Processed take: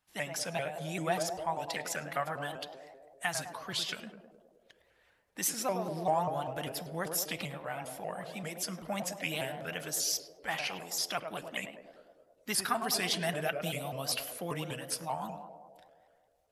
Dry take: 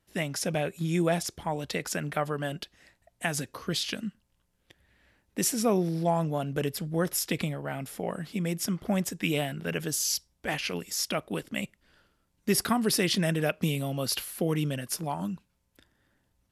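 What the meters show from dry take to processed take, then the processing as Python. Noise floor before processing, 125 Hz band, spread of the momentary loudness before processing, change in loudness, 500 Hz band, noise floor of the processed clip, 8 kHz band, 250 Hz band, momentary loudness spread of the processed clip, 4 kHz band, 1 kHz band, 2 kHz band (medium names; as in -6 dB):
-74 dBFS, -11.0 dB, 9 LU, -5.0 dB, -5.5 dB, -70 dBFS, -3.5 dB, -12.0 dB, 10 LU, -3.0 dB, -0.5 dB, -2.5 dB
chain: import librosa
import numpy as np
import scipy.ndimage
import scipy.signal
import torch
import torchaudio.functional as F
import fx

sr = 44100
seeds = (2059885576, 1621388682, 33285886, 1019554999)

y = fx.spec_quant(x, sr, step_db=15)
y = fx.low_shelf_res(y, sr, hz=570.0, db=-9.0, q=1.5)
y = fx.echo_banded(y, sr, ms=104, feedback_pct=78, hz=490.0, wet_db=-4.5)
y = fx.room_shoebox(y, sr, seeds[0], volume_m3=3800.0, walls='furnished', distance_m=0.63)
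y = fx.vibrato_shape(y, sr, shape='saw_up', rate_hz=5.1, depth_cents=160.0)
y = F.gain(torch.from_numpy(y), -3.0).numpy()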